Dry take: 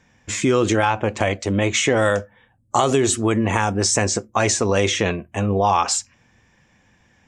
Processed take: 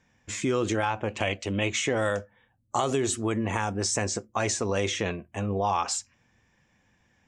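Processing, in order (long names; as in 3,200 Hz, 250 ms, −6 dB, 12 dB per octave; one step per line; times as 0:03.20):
0:01.10–0:01.70: parametric band 2,800 Hz +11 dB 0.46 octaves
level −8.5 dB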